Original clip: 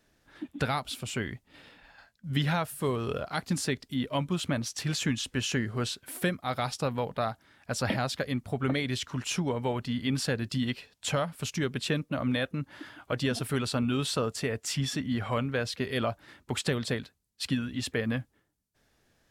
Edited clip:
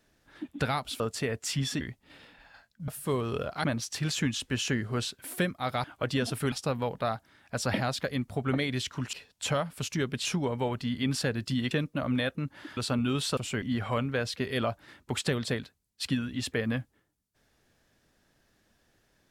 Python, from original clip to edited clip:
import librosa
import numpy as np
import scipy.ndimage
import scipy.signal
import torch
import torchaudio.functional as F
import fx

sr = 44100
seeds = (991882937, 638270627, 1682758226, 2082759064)

y = fx.edit(x, sr, fx.swap(start_s=1.0, length_s=0.25, other_s=14.21, other_length_s=0.81),
    fx.cut(start_s=2.32, length_s=0.31),
    fx.cut(start_s=3.39, length_s=1.09),
    fx.move(start_s=10.75, length_s=1.12, to_s=9.29),
    fx.move(start_s=12.93, length_s=0.68, to_s=6.68), tone=tone)